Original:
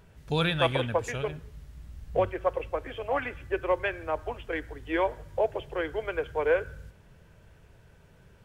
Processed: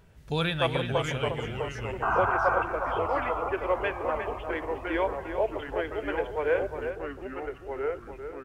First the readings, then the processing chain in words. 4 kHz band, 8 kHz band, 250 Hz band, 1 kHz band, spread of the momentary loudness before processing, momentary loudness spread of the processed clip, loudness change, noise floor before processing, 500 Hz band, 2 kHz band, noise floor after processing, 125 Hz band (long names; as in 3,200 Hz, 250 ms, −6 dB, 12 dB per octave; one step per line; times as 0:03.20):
0.0 dB, can't be measured, +1.0 dB, +4.5 dB, 12 LU, 9 LU, +0.5 dB, −57 dBFS, +0.5 dB, +2.0 dB, −46 dBFS, +1.0 dB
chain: sound drawn into the spectrogram noise, 0:02.02–0:02.63, 640–1,600 Hz −25 dBFS
slap from a distant wall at 61 metres, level −8 dB
delay with pitch and tempo change per echo 539 ms, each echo −2 semitones, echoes 3, each echo −6 dB
level −1.5 dB